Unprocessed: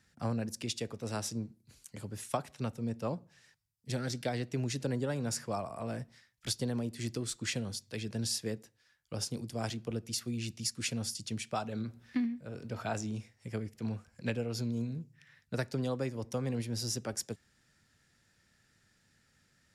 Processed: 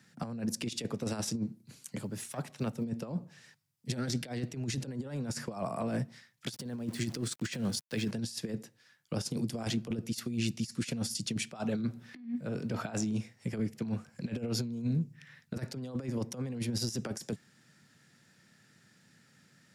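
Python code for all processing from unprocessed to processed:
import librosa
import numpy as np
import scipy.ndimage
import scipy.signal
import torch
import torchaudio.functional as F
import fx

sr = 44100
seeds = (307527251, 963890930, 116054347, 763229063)

y = fx.chain(x, sr, fx.block_float(bits=7),
    fx.highpass(hz=50.0, slope=12),
    fx.tube_stage(drive_db=27.0, bias=0.6), at=(1.98, 2.86))
y = fx.chain(y, sr, fx.peak_eq(hz=1600.0, db=4.0, octaves=0.3),
    fx.sample_gate(floor_db=-51.5), at=(6.52, 8.11))
y = scipy.signal.sosfilt(scipy.signal.butter(4, 140.0, 'highpass', fs=sr, output='sos'), y)
y = fx.over_compress(y, sr, threshold_db=-39.0, ratio=-0.5)
y = fx.bass_treble(y, sr, bass_db=7, treble_db=-1)
y = F.gain(torch.from_numpy(y), 2.5).numpy()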